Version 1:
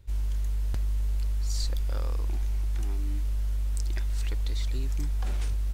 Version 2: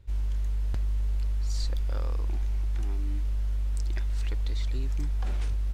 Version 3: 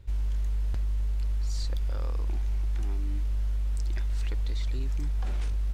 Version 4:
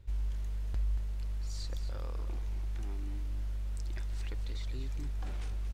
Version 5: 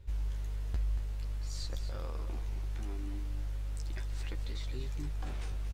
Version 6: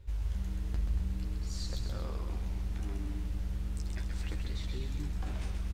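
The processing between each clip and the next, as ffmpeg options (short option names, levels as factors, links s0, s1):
-af "highshelf=f=6500:g=-10.5"
-af "alimiter=level_in=1.5:limit=0.0631:level=0:latency=1:release=41,volume=0.668,volume=1.58"
-af "aecho=1:1:231:0.316,volume=0.562"
-filter_complex "[0:a]asplit=2[s0][s1];[s1]adelay=13,volume=0.531[s2];[s0][s2]amix=inputs=2:normalize=0,volume=1.12"
-filter_complex "[0:a]asplit=5[s0][s1][s2][s3][s4];[s1]adelay=130,afreqshift=-120,volume=0.562[s5];[s2]adelay=260,afreqshift=-240,volume=0.186[s6];[s3]adelay=390,afreqshift=-360,volume=0.061[s7];[s4]adelay=520,afreqshift=-480,volume=0.0202[s8];[s0][s5][s6][s7][s8]amix=inputs=5:normalize=0"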